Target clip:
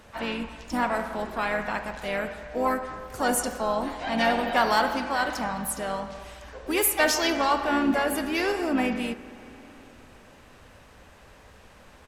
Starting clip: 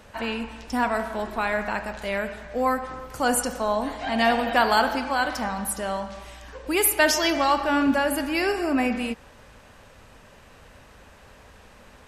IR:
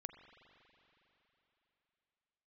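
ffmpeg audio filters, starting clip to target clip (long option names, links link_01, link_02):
-filter_complex "[0:a]asplit=3[link_01][link_02][link_03];[link_02]asetrate=35002,aresample=44100,atempo=1.25992,volume=-12dB[link_04];[link_03]asetrate=55563,aresample=44100,atempo=0.793701,volume=-11dB[link_05];[link_01][link_04][link_05]amix=inputs=3:normalize=0,aeval=exprs='0.631*(cos(1*acos(clip(val(0)/0.631,-1,1)))-cos(1*PI/2))+0.0282*(cos(5*acos(clip(val(0)/0.631,-1,1)))-cos(5*PI/2))':channel_layout=same,asplit=2[link_06][link_07];[1:a]atrim=start_sample=2205,asetrate=37926,aresample=44100[link_08];[link_07][link_08]afir=irnorm=-1:irlink=0,volume=-1.5dB[link_09];[link_06][link_09]amix=inputs=2:normalize=0,volume=-7.5dB"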